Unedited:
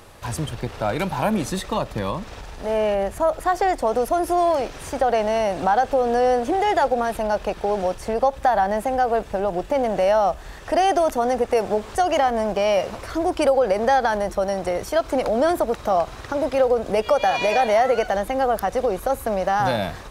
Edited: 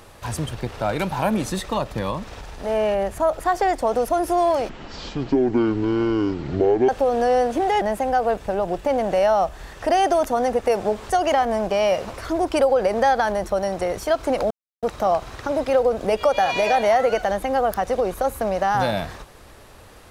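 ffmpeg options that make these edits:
-filter_complex "[0:a]asplit=6[a][b][c][d][e][f];[a]atrim=end=4.694[g];[b]atrim=start=4.69:end=5.81,asetpts=PTS-STARTPTS,asetrate=22491,aresample=44100,atrim=end_sample=96847,asetpts=PTS-STARTPTS[h];[c]atrim=start=5.806:end=6.742[i];[d]atrim=start=8.668:end=15.36,asetpts=PTS-STARTPTS,afade=t=out:st=6.688:d=0.004:c=hsin[j];[e]atrim=start=15.36:end=15.68,asetpts=PTS-STARTPTS,volume=0[k];[f]atrim=start=15.68,asetpts=PTS-STARTPTS,afade=t=in:d=0.004:c=hsin[l];[g][h]acrossfade=d=0.004:c1=hsin:c2=hsin[m];[m][i]acrossfade=d=0.004:c1=hsin:c2=hsin[n];[j][k][l]concat=n=3:v=0:a=1[o];[n][o]acrossfade=d=0.004:c1=hsin:c2=hsin"

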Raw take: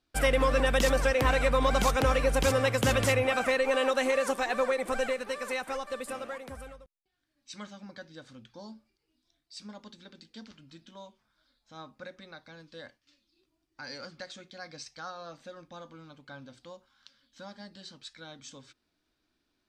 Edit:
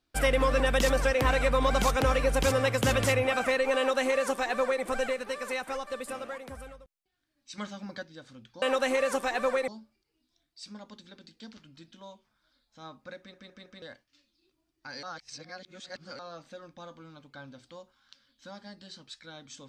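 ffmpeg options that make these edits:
-filter_complex "[0:a]asplit=11[a][b][c][d][e][f][g][h][i][j][k];[a]atrim=end=7.582[l];[b]atrim=start=7.578:end=8.032,asetpts=PTS-STARTPTS,volume=5.5dB[m];[c]atrim=start=8.028:end=8.622[n];[d]atrim=start=3.768:end=4.832[o];[e]atrim=start=8.618:end=12.282[p];[f]atrim=start=12.118:end=12.282[q];[g]atrim=start=12.118:end=12.282[r];[h]atrim=start=12.118:end=12.282[s];[i]atrim=start=12.758:end=13.972[t];[j]atrim=start=13.968:end=15.132,asetpts=PTS-STARTPTS,areverse[u];[k]atrim=start=15.128[v];[l][m]acrossfade=d=0.004:c1=hsin:c2=hsin[w];[w][n]acrossfade=d=0.004:c1=hsin:c2=hsin[x];[x][o]acrossfade=d=0.004:c1=hsin:c2=hsin[y];[y][p]acrossfade=d=0.004:c1=hsin:c2=hsin[z];[z][q]acrossfade=d=0.004:c1=hsin:c2=hsin[aa];[aa][r]acrossfade=d=0.004:c1=hsin:c2=hsin[ab];[ab][s]acrossfade=d=0.004:c1=hsin:c2=hsin[ac];[ac][t]acrossfade=d=0.004:c1=hsin:c2=hsin[ad];[ad][u]acrossfade=d=0.004:c1=hsin:c2=hsin[ae];[ae][v]acrossfade=d=0.004:c1=hsin:c2=hsin"

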